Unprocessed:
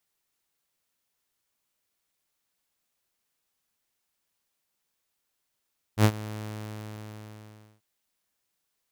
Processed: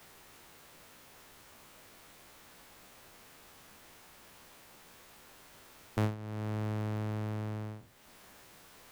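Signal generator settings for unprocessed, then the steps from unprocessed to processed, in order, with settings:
ADSR saw 107 Hz, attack 74 ms, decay 65 ms, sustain -19.5 dB, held 0.41 s, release 1.43 s -12 dBFS
spectral trails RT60 0.36 s; high shelf 2800 Hz -11.5 dB; three-band squash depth 100%

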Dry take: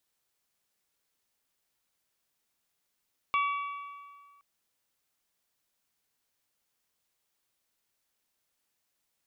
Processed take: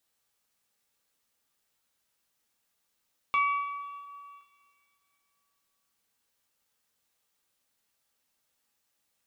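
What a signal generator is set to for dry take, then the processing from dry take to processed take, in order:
metal hit bell, length 1.07 s, lowest mode 1140 Hz, modes 4, decay 1.85 s, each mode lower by 6 dB, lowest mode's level -24 dB
two-slope reverb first 0.26 s, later 2.7 s, from -18 dB, DRR 2 dB

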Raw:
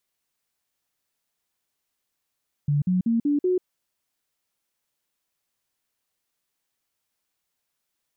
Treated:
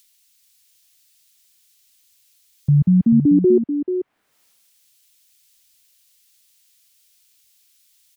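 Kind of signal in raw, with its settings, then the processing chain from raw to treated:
stepped sine 145 Hz up, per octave 3, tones 5, 0.14 s, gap 0.05 s -18.5 dBFS
upward compressor, threshold -41 dBFS; echo 0.437 s -8.5 dB; three-band expander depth 100%

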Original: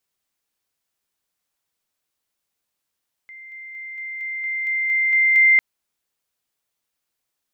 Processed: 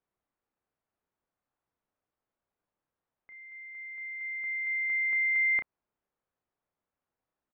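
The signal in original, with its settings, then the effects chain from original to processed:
level ladder 2090 Hz -37.5 dBFS, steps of 3 dB, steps 10, 0.23 s 0.00 s
LPF 1200 Hz 12 dB/oct; doubler 32 ms -8 dB; compressor 2:1, threshold -28 dBFS

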